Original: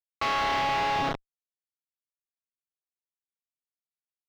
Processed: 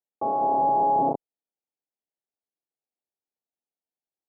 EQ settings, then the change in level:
high-pass filter 220 Hz 12 dB per octave
elliptic low-pass filter 840 Hz, stop band 50 dB
+7.5 dB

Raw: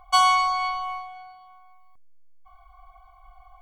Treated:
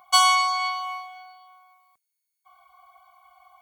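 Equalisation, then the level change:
high-pass filter 110 Hz 12 dB per octave
spectral tilt +3 dB per octave
−1.0 dB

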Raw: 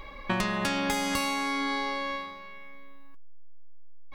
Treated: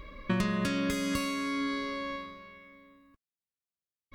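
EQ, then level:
high-pass filter 65 Hz 6 dB per octave
Butterworth band-reject 810 Hz, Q 2.9
low-shelf EQ 320 Hz +11.5 dB
−5.5 dB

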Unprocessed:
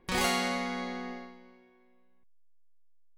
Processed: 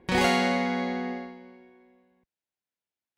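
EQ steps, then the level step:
high-pass filter 57 Hz
low-pass filter 2,200 Hz 6 dB per octave
parametric band 1,200 Hz −10.5 dB 0.24 octaves
+8.0 dB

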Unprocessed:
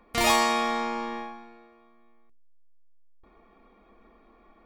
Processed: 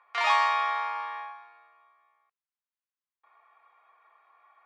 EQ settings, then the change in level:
high-pass filter 950 Hz 24 dB per octave
low-pass filter 1,400 Hz 6 dB per octave
high-frequency loss of the air 120 metres
+6.0 dB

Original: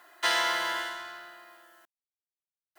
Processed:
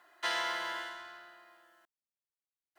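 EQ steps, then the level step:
high-shelf EQ 7,700 Hz −8.5 dB
−6.5 dB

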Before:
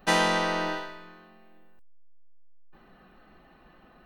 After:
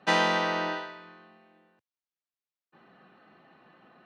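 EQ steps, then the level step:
high-pass filter 110 Hz 24 dB per octave
low-pass filter 4,800 Hz 12 dB per octave
parametric band 190 Hz −2.5 dB 2.5 octaves
0.0 dB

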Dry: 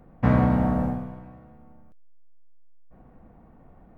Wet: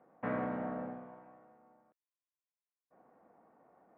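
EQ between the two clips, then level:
dynamic equaliser 880 Hz, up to −8 dB, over −42 dBFS, Q 1.5
band-pass filter 450–2,100 Hz
high-frequency loss of the air 190 metres
−4.5 dB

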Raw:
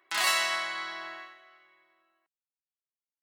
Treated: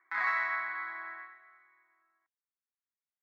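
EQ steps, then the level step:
high-pass filter 190 Hz 24 dB per octave
transistor ladder low-pass 2,400 Hz, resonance 55%
phaser with its sweep stopped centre 1,200 Hz, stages 4
+6.0 dB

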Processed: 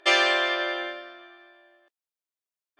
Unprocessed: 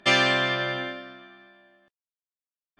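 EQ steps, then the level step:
linear-phase brick-wall high-pass 290 Hz
parametric band 660 Hz +2 dB 0.25 octaves
0.0 dB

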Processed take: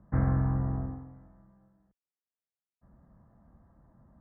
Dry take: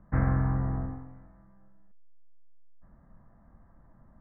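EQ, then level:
high-pass filter 47 Hz
low-pass filter 1,000 Hz 6 dB per octave
0.0 dB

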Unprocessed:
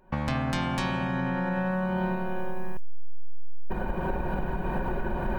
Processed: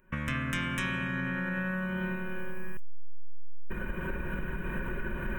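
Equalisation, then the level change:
tilt shelving filter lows −4.5 dB, about 890 Hz
phaser with its sweep stopped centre 1,900 Hz, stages 4
0.0 dB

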